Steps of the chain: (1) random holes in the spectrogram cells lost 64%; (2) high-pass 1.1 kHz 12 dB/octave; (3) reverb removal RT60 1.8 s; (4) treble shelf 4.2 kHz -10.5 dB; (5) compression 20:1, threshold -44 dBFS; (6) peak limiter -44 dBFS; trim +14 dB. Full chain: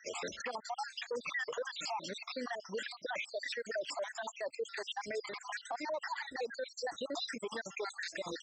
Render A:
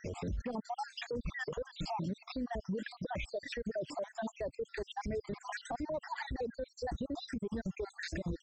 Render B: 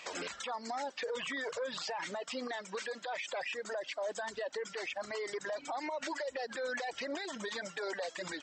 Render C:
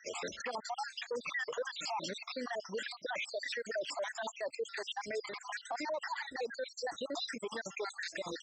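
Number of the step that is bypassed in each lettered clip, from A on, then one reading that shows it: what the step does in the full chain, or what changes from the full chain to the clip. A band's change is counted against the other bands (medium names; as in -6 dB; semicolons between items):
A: 2, 250 Hz band +14.0 dB; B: 1, 250 Hz band +2.0 dB; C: 5, mean gain reduction 2.0 dB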